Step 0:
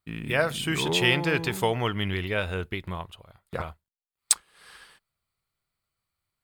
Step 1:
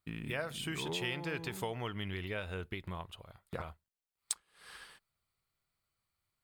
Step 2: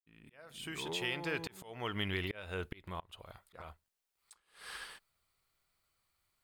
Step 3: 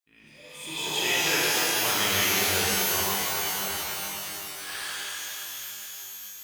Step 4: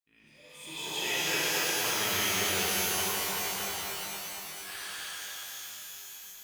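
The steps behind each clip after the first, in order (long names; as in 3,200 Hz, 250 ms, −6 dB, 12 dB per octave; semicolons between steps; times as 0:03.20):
downward compressor 2.5 to 1, threshold −38 dBFS, peak gain reduction 15.5 dB; level −2 dB
fade in at the beginning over 1.94 s; parametric band 130 Hz −6 dB 1.8 octaves; volume swells 344 ms; level +6 dB
low-shelf EQ 360 Hz −11.5 dB; healed spectral selection 0:00.32–0:00.77, 610–5,500 Hz both; reverb with rising layers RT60 3.8 s, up +12 semitones, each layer −2 dB, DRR −8 dB; level +5.5 dB
feedback echo at a low word length 229 ms, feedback 55%, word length 8 bits, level −3.5 dB; level −6.5 dB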